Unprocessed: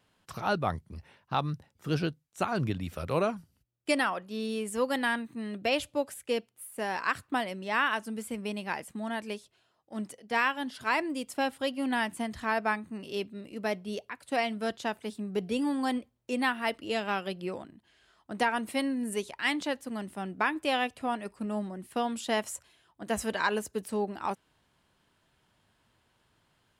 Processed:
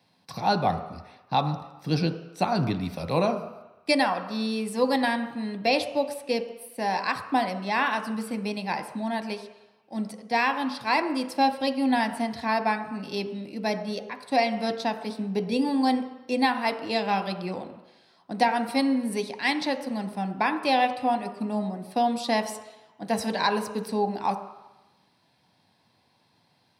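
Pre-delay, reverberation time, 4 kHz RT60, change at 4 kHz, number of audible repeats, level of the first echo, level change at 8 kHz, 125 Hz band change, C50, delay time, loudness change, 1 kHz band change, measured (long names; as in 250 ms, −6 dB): 3 ms, 1.0 s, 1.1 s, +5.0 dB, no echo audible, no echo audible, 0.0 dB, +5.0 dB, 10.0 dB, no echo audible, +5.0 dB, +7.0 dB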